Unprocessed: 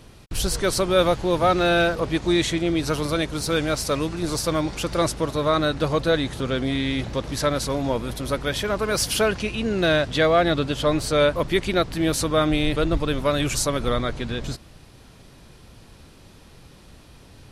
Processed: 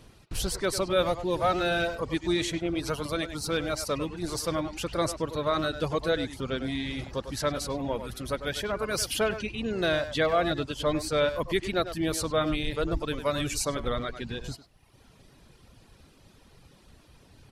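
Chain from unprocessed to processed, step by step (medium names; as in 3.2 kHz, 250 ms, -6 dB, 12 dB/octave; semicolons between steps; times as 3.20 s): reverb removal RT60 1 s; speakerphone echo 100 ms, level -9 dB; trim -5.5 dB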